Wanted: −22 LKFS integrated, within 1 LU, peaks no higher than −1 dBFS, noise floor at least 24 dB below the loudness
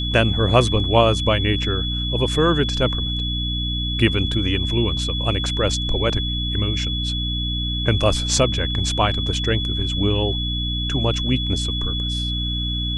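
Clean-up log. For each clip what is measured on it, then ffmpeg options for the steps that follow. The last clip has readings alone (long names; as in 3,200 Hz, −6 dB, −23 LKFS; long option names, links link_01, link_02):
mains hum 60 Hz; hum harmonics up to 300 Hz; level of the hum −23 dBFS; interfering tone 3,400 Hz; level of the tone −25 dBFS; integrated loudness −20.5 LKFS; sample peak −1.5 dBFS; target loudness −22.0 LKFS
→ -af "bandreject=frequency=60:width_type=h:width=4,bandreject=frequency=120:width_type=h:width=4,bandreject=frequency=180:width_type=h:width=4,bandreject=frequency=240:width_type=h:width=4,bandreject=frequency=300:width_type=h:width=4"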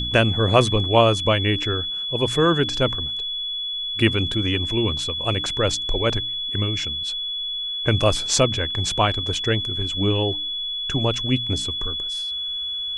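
mains hum none found; interfering tone 3,400 Hz; level of the tone −25 dBFS
→ -af "bandreject=frequency=3400:width=30"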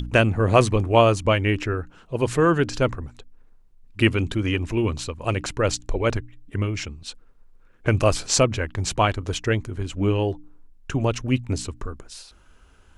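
interfering tone none found; integrated loudness −23.0 LKFS; sample peak −2.5 dBFS; target loudness −22.0 LKFS
→ -af "volume=1dB"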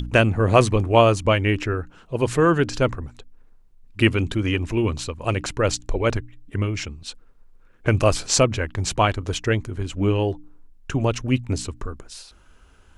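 integrated loudness −22.0 LKFS; sample peak −1.5 dBFS; background noise floor −52 dBFS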